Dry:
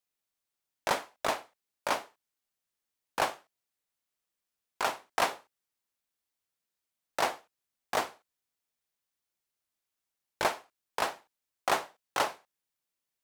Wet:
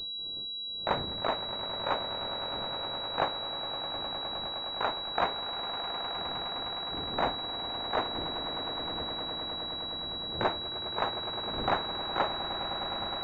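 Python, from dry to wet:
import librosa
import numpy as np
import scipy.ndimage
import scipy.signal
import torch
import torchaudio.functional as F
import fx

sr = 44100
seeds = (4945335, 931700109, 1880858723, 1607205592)

y = fx.dmg_wind(x, sr, seeds[0], corner_hz=430.0, level_db=-48.0)
y = fx.echo_swell(y, sr, ms=103, loudest=8, wet_db=-13)
y = fx.pwm(y, sr, carrier_hz=3900.0)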